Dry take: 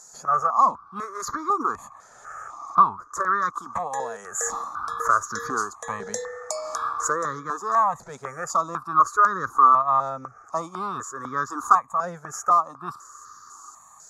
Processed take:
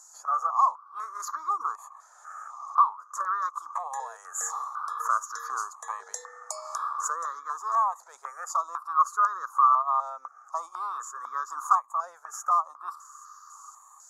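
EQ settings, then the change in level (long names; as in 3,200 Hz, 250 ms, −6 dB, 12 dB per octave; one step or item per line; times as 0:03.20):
dynamic equaliser 1,900 Hz, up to −5 dB, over −30 dBFS, Q 0.97
four-pole ladder high-pass 860 Hz, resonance 40%
parametric band 2,400 Hz −13 dB 2.4 octaves
+8.5 dB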